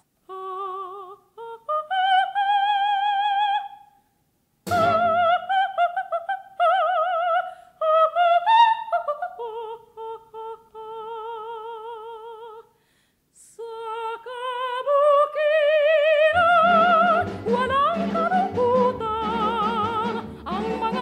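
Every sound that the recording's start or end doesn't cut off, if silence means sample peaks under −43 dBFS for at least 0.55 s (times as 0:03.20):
0:04.67–0:12.61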